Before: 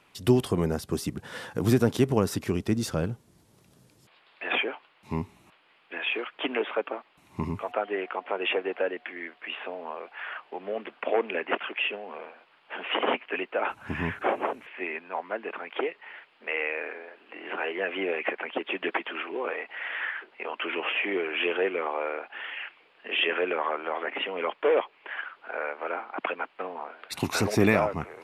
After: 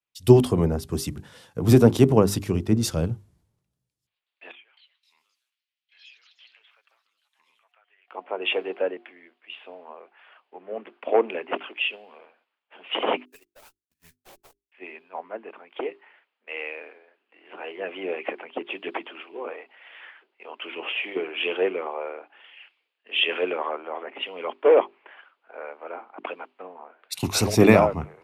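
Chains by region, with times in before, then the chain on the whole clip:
4.51–8.08 s: high-pass 1.5 kHz + compression 2.5:1, threshold -46 dBFS + ever faster or slower copies 261 ms, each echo +4 st, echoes 3, each echo -6 dB
13.25–14.72 s: zero-crossing glitches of -21.5 dBFS + gate -26 dBFS, range -56 dB + valve stage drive 38 dB, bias 0.35
whole clip: hum notches 50/100/150/200/250/300/350/400 Hz; dynamic bell 1.7 kHz, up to -7 dB, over -45 dBFS, Q 1.5; three bands expanded up and down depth 100%

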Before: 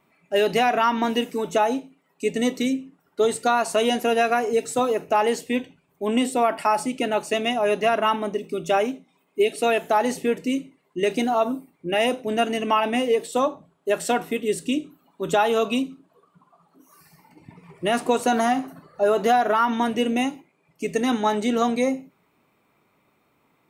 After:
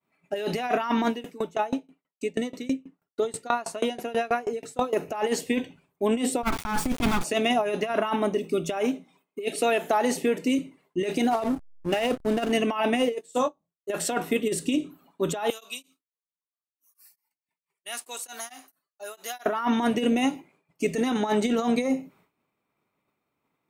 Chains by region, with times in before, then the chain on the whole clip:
1.08–4.93 s: treble shelf 5.8 kHz -5.5 dB + sawtooth tremolo in dB decaying 6.2 Hz, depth 25 dB
6.43–7.24 s: comb filter that takes the minimum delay 0.86 ms + bass shelf 250 Hz +9 dB + small samples zeroed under -31.5 dBFS
9.59–10.59 s: high-pass 160 Hz + compression 4:1, threshold -21 dBFS
11.31–12.52 s: CVSD coder 64 kbps + hysteresis with a dead band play -27 dBFS
13.12–13.90 s: peaking EQ 7.2 kHz +9 dB 0.52 oct + doubling 24 ms -6.5 dB + upward expansion 2.5:1, over -36 dBFS
15.50–19.46 s: differentiator + tremolo of two beating tones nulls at 4.5 Hz
whole clip: compressor with a negative ratio -23 dBFS, ratio -0.5; expander -52 dBFS

